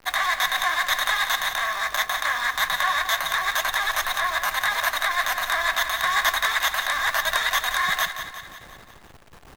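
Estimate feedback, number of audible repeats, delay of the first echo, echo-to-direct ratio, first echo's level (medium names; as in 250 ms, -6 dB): 56%, 5, 177 ms, -8.5 dB, -10.0 dB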